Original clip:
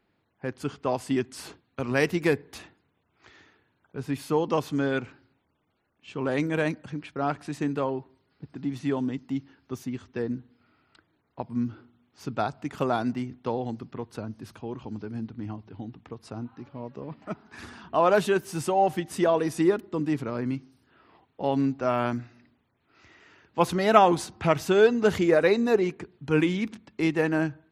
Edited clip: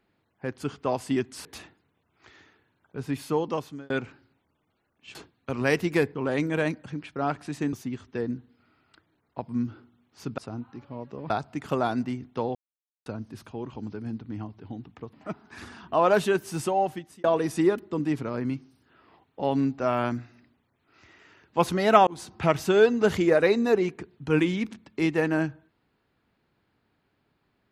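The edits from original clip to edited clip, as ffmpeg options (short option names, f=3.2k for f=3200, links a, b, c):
-filter_complex "[0:a]asplit=13[a][b][c][d][e][f][g][h][i][j][k][l][m];[a]atrim=end=1.452[n];[b]atrim=start=2.448:end=4.9,asetpts=PTS-STARTPTS,afade=t=out:st=1.632:d=0.82:c=qsin[o];[c]atrim=start=4.9:end=6.152,asetpts=PTS-STARTPTS,afade=t=in:d=0.004:c=hsin[p];[d]atrim=start=1.448:end=2.452[q];[e]atrim=start=6.148:end=7.732[r];[f]atrim=start=9.738:end=12.392[s];[g]atrim=start=16.218:end=17.142[t];[h]atrim=start=12.388:end=13.64,asetpts=PTS-STARTPTS,afade=t=out:st=1.248:d=0.004:c=hsin[u];[i]atrim=start=13.64:end=14.15,asetpts=PTS-STARTPTS,volume=0[v];[j]atrim=start=14.15:end=16.222,asetpts=PTS-STARTPTS,afade=t=in:d=0.004:c=hsin[w];[k]atrim=start=17.138:end=19.25,asetpts=PTS-STARTPTS,afade=t=out:st=1.532:d=0.58[x];[l]atrim=start=19.25:end=24.08,asetpts=PTS-STARTPTS,afade=t=in:d=0.004:c=hsin,afade=t=out:st=4.826:d=0.004:c=hsin[y];[m]atrim=start=24.08,asetpts=PTS-STARTPTS,afade=t=in:d=0.28[z];[o][p]concat=n=2:v=0:a=1[aa];[n][aa]acrossfade=d=0.004:c1=hsin:c2=hsin[ab];[ab][q]acrossfade=d=0.004:c1=hsin:c2=hsin[ac];[ac][r]acrossfade=d=0.004:c1=hsin:c2=hsin[ad];[ad][s]acrossfade=d=0.004:c1=hsin:c2=hsin[ae];[ae][t]acrossfade=d=0.004:c1=hsin:c2=hsin[af];[u][v][w]concat=n=3:v=0:a=1[ag];[af][ag]acrossfade=d=0.004:c1=hsin:c2=hsin[ah];[x][y][z]concat=n=3:v=0:a=1[ai];[ah][ai]acrossfade=d=0.004:c1=hsin:c2=hsin"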